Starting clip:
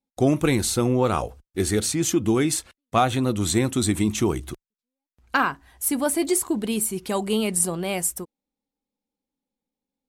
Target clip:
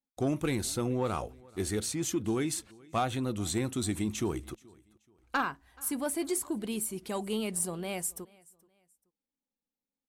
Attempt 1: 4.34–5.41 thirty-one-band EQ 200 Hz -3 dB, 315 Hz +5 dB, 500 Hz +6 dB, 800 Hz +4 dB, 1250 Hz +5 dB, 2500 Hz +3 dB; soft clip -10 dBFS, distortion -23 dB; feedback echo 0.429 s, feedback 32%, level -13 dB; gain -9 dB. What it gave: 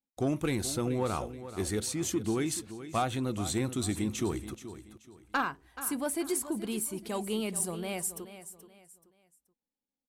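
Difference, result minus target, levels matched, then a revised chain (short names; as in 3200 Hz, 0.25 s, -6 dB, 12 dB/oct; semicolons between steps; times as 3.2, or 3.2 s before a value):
echo-to-direct +12 dB
4.34–5.41 thirty-one-band EQ 200 Hz -3 dB, 315 Hz +5 dB, 500 Hz +6 dB, 800 Hz +4 dB, 1250 Hz +5 dB, 2500 Hz +3 dB; soft clip -10 dBFS, distortion -23 dB; feedback echo 0.429 s, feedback 32%, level -25 dB; gain -9 dB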